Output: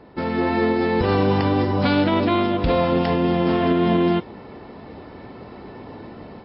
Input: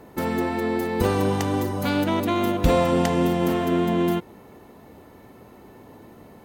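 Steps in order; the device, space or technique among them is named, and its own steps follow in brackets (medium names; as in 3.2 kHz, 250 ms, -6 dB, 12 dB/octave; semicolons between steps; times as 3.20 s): low-bitrate web radio (level rider gain up to 9 dB; peak limiter -10 dBFS, peak gain reduction 8 dB; MP3 24 kbps 12 kHz)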